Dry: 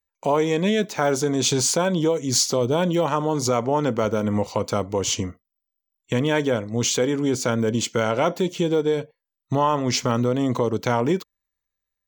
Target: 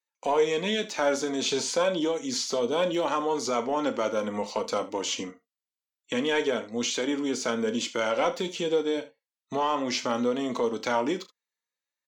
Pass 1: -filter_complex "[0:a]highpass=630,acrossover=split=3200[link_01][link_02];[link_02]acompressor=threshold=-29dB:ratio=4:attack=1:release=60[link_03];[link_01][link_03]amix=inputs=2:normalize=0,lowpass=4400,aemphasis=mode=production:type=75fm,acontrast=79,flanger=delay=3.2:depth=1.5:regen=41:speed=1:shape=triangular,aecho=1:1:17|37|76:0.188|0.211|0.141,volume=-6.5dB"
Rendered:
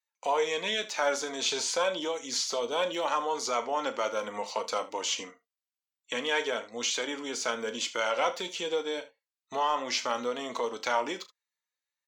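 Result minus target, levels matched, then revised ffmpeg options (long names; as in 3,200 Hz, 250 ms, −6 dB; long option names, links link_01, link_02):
250 Hz band −8.0 dB
-filter_complex "[0:a]highpass=280,acrossover=split=3200[link_01][link_02];[link_02]acompressor=threshold=-29dB:ratio=4:attack=1:release=60[link_03];[link_01][link_03]amix=inputs=2:normalize=0,lowpass=4400,aemphasis=mode=production:type=75fm,acontrast=79,flanger=delay=3.2:depth=1.5:regen=41:speed=1:shape=triangular,aecho=1:1:17|37|76:0.188|0.211|0.141,volume=-6.5dB"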